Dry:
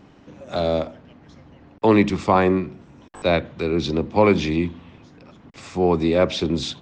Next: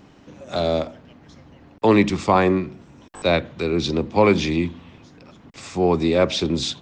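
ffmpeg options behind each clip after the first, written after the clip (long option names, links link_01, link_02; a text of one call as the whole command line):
ffmpeg -i in.wav -af "highshelf=frequency=4500:gain=7" out.wav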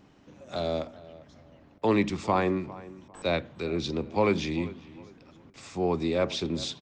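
ffmpeg -i in.wav -filter_complex "[0:a]asplit=2[link_01][link_02];[link_02]adelay=400,lowpass=frequency=2200:poles=1,volume=-18dB,asplit=2[link_03][link_04];[link_04]adelay=400,lowpass=frequency=2200:poles=1,volume=0.3,asplit=2[link_05][link_06];[link_06]adelay=400,lowpass=frequency=2200:poles=1,volume=0.3[link_07];[link_01][link_03][link_05][link_07]amix=inputs=4:normalize=0,volume=-8.5dB" out.wav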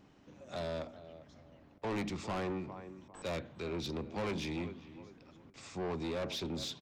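ffmpeg -i in.wav -af "asoftclip=type=tanh:threshold=-28.5dB,volume=-4.5dB" out.wav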